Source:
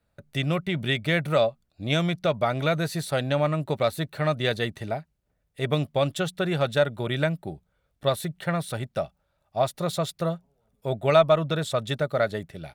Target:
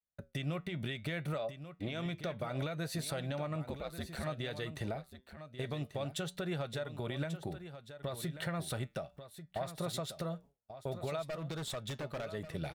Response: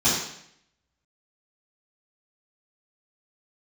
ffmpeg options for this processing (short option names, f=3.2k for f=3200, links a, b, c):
-filter_complex "[0:a]asettb=1/sr,asplit=3[a][b][c];[a]atrim=end=1.384[d];[b]atrim=start=1.38:end=2.06,asetpts=PTS-STARTPTS,afade=t=in:d=0.004:c=qsin,afade=t=out:st=0.676:d=0.004:c=qsin,bass=f=250:g=-6,treble=f=4k:g=-7[e];[c]atrim=start=2.056[f];[d][e]acrossfade=d=0.004:c1=hsin:c2=qsin[g];[g][f]acrossfade=d=0.004:c1=qsin:c2=hsin,agate=range=-33dB:threshold=-41dB:ratio=3:detection=peak,acompressor=threshold=-32dB:ratio=16,alimiter=level_in=6.5dB:limit=-24dB:level=0:latency=1:release=161,volume=-6.5dB,asettb=1/sr,asplit=3[h][i][j];[h]atrim=end=11.254[k];[i]atrim=start=11.25:end=12.34,asetpts=PTS-STARTPTS,afade=t=in:d=0.004:c=qsin,afade=t=out:st=1.086:d=0.004:c=qsin,aeval=exprs='0.0158*(abs(mod(val(0)/0.0158+3,4)-2)-1)':c=same[l];[j]atrim=start=12.336[m];[k][l]acrossfade=d=0.004:c1=hsin:c2=qsin[n];[n][m]acrossfade=d=0.004:c1=qsin:c2=hsin,flanger=delay=5.8:depth=2:regen=-82:speed=0.61:shape=sinusoidal,asplit=3[o][p][q];[o]afade=t=out:st=3.66:d=0.02[r];[p]aeval=exprs='val(0)*sin(2*PI*66*n/s)':c=same,afade=t=in:st=3.66:d=0.02,afade=t=out:st=4.22:d=0.02[s];[q]afade=t=in:st=4.22:d=0.02[t];[r][s][t]amix=inputs=3:normalize=0,aecho=1:1:1139:0.266,volume=6.5dB"